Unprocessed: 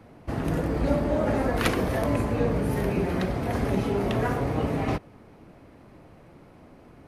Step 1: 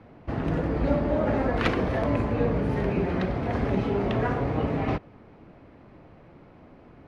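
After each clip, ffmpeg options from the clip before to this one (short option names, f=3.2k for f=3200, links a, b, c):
-af "lowpass=3.6k"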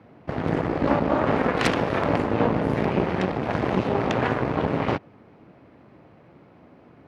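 -af "aeval=exprs='0.501*(cos(1*acos(clip(val(0)/0.501,-1,1)))-cos(1*PI/2))+0.141*(cos(8*acos(clip(val(0)/0.501,-1,1)))-cos(8*PI/2))':c=same,highpass=98"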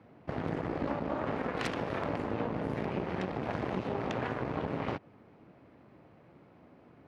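-af "acompressor=threshold=-23dB:ratio=6,volume=-6.5dB"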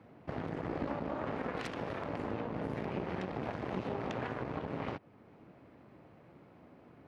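-af "alimiter=level_in=1.5dB:limit=-24dB:level=0:latency=1:release=451,volume=-1.5dB"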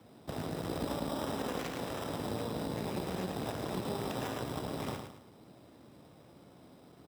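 -filter_complex "[0:a]acrossover=split=160|2100[a][b][c];[b]acrusher=samples=10:mix=1:aa=0.000001[d];[a][d][c]amix=inputs=3:normalize=0,aecho=1:1:108|216|324|432:0.473|0.18|0.0683|0.026"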